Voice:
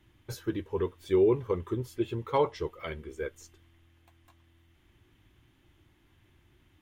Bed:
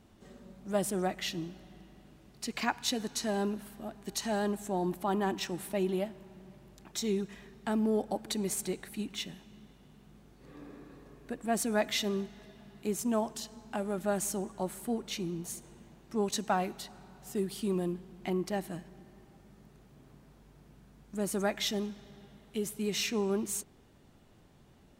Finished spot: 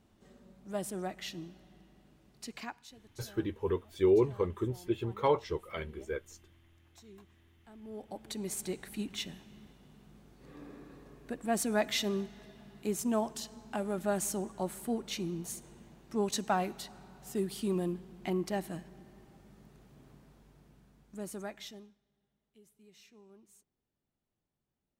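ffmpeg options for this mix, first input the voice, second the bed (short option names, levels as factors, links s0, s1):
-filter_complex "[0:a]adelay=2900,volume=0.841[s0];[1:a]volume=7.08,afade=t=out:st=2.43:d=0.47:silence=0.133352,afade=t=in:st=7.8:d=1.12:silence=0.0707946,afade=t=out:st=20.06:d=1.93:silence=0.0446684[s1];[s0][s1]amix=inputs=2:normalize=0"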